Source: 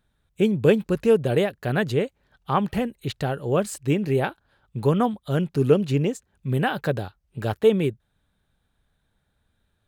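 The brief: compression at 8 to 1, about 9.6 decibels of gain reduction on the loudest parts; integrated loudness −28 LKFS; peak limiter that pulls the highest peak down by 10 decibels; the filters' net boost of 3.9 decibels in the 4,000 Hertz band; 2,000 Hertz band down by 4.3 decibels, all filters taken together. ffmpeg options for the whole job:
ffmpeg -i in.wav -af "equalizer=frequency=2000:width_type=o:gain=-8.5,equalizer=frequency=4000:width_type=o:gain=9,acompressor=threshold=-22dB:ratio=8,volume=5.5dB,alimiter=limit=-18.5dB:level=0:latency=1" out.wav

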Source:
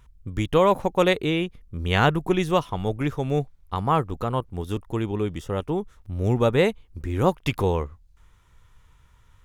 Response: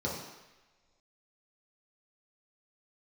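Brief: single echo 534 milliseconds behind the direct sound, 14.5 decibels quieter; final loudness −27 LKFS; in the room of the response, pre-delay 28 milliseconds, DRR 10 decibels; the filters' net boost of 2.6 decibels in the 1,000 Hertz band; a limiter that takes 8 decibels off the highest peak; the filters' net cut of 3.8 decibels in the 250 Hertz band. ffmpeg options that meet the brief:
-filter_complex "[0:a]equalizer=frequency=250:width_type=o:gain=-6.5,equalizer=frequency=1000:width_type=o:gain=3.5,alimiter=limit=-13dB:level=0:latency=1,aecho=1:1:534:0.188,asplit=2[link_01][link_02];[1:a]atrim=start_sample=2205,adelay=28[link_03];[link_02][link_03]afir=irnorm=-1:irlink=0,volume=-16.5dB[link_04];[link_01][link_04]amix=inputs=2:normalize=0,volume=-1dB"

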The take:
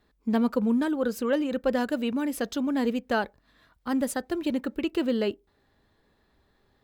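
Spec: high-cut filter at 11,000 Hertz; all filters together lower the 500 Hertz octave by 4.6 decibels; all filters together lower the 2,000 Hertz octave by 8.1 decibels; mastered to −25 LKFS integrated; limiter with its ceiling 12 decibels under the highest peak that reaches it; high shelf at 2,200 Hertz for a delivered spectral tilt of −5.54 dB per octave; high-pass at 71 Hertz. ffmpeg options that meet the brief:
ffmpeg -i in.wav -af "highpass=71,lowpass=11000,equalizer=frequency=500:width_type=o:gain=-4.5,equalizer=frequency=2000:width_type=o:gain=-8.5,highshelf=frequency=2200:gain=-5.5,volume=10.5dB,alimiter=limit=-17dB:level=0:latency=1" out.wav

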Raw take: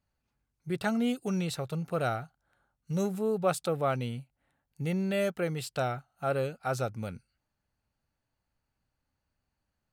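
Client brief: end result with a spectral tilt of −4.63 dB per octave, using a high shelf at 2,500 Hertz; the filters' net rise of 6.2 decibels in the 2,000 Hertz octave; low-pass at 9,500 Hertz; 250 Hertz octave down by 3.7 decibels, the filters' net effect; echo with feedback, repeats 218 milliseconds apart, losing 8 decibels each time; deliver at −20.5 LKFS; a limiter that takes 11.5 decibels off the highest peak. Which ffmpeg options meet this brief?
ffmpeg -i in.wav -af "lowpass=9500,equalizer=frequency=250:width_type=o:gain=-5.5,equalizer=frequency=2000:width_type=o:gain=6,highshelf=frequency=2500:gain=6,alimiter=limit=-23.5dB:level=0:latency=1,aecho=1:1:218|436|654|872|1090:0.398|0.159|0.0637|0.0255|0.0102,volume=13.5dB" out.wav

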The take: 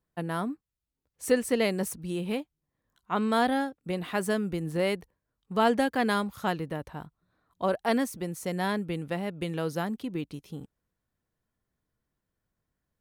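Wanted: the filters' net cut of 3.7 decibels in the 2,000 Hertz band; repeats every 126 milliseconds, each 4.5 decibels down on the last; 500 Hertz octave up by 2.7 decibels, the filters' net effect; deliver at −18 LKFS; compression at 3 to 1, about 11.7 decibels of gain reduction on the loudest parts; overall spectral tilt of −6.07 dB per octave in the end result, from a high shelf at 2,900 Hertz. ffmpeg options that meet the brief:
ffmpeg -i in.wav -af "equalizer=frequency=500:width_type=o:gain=3.5,equalizer=frequency=2000:width_type=o:gain=-3.5,highshelf=frequency=2900:gain=-4,acompressor=threshold=-31dB:ratio=3,aecho=1:1:126|252|378|504|630|756|882|1008|1134:0.596|0.357|0.214|0.129|0.0772|0.0463|0.0278|0.0167|0.01,volume=16dB" out.wav

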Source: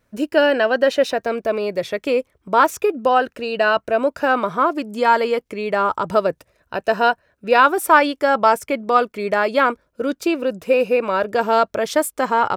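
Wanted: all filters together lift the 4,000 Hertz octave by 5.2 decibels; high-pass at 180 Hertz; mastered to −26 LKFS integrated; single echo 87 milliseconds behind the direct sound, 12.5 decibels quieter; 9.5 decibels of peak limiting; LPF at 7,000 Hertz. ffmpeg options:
ffmpeg -i in.wav -af "highpass=180,lowpass=7000,equalizer=frequency=4000:width_type=o:gain=7.5,alimiter=limit=-9.5dB:level=0:latency=1,aecho=1:1:87:0.237,volume=-5dB" out.wav

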